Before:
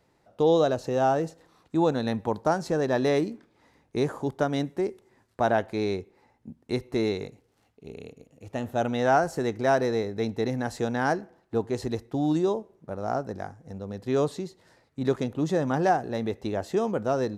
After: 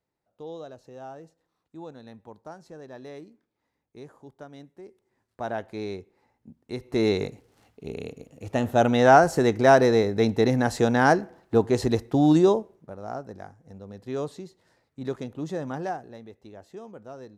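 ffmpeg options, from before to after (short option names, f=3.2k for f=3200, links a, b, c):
-af "volume=6.5dB,afade=t=in:st=4.82:d=0.96:silence=0.237137,afade=t=in:st=6.77:d=0.44:silence=0.251189,afade=t=out:st=12.47:d=0.46:silence=0.237137,afade=t=out:st=15.68:d=0.56:silence=0.316228"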